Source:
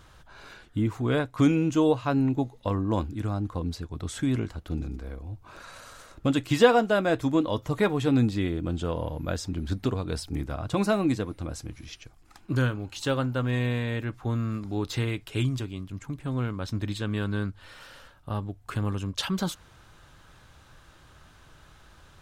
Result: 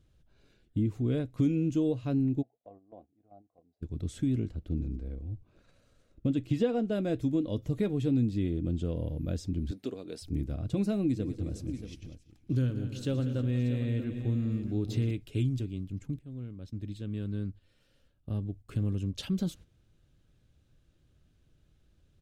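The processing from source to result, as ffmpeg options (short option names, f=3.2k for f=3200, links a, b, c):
-filter_complex "[0:a]asplit=3[a][b][c];[a]afade=t=out:st=2.41:d=0.02[d];[b]bandpass=f=710:t=q:w=7.9,afade=t=in:st=2.41:d=0.02,afade=t=out:st=3.81:d=0.02[e];[c]afade=t=in:st=3.81:d=0.02[f];[d][e][f]amix=inputs=3:normalize=0,asettb=1/sr,asplit=3[g][h][i];[g]atrim=end=4.494[j];[h]atrim=start=4.49:end=6.92,asetpts=PTS-STARTPTS,afade=t=in:d=0.004:c=qsin,afade=t=out:st=2.426:d=0.004:c=qsin,highshelf=f=4.5k:g=-8.5[k];[i]atrim=start=6.916[l];[j][k]acrossfade=d=0.004:c1=hsin:c2=qsin[m];[m][l]acrossfade=d=0.004:c1=qsin:c2=hsin,asettb=1/sr,asplit=3[n][o][p];[n]atrim=end=9.714[q];[o]atrim=start=9.71:end=10.22,asetpts=PTS-STARTPTS,afade=t=in:d=0.004:c=qsin,afade=t=out:st=0.506:d=0.004:c=qsin,highpass=390[r];[p]atrim=start=10.216[s];[q][r]acrossfade=d=0.004:c1=hsin:c2=qsin[t];[t][s]acrossfade=d=0.004:c1=qsin:c2=hsin,asettb=1/sr,asplit=3[u][v][w];[u]atrim=end=11.054[x];[v]atrim=start=11.05:end=15.11,asetpts=PTS-STARTPTS,afade=t=in:d=0.004:c=qsin,afade=t=out:st=4.056:d=0.004:c=qsin,aecho=1:1:118|195|331|360|631:0.15|0.224|0.1|0.141|0.266,atrim=end_sample=179046[y];[w]atrim=start=15.106[z];[x][y]acrossfade=d=0.004:c1=hsin:c2=qsin[aa];[aa][z]acrossfade=d=0.004:c1=qsin:c2=hsin,asplit=2[ab][ac];[ab]atrim=end=16.19,asetpts=PTS-STARTPTS,afade=t=out:st=16.186:d=0.004:c=hsin:silence=0.211349[ad];[ac]atrim=start=16.19,asetpts=PTS-STARTPTS,afade=t=in:d=2.38:silence=0.211349[ae];[ad][ae]concat=n=2:v=0:a=1,agate=range=-10dB:threshold=-44dB:ratio=16:detection=peak,firequalizer=gain_entry='entry(240,0);entry(580,-8);entry(930,-21);entry(2500,-10)':delay=0.05:min_phase=1,acompressor=threshold=-26dB:ratio=2"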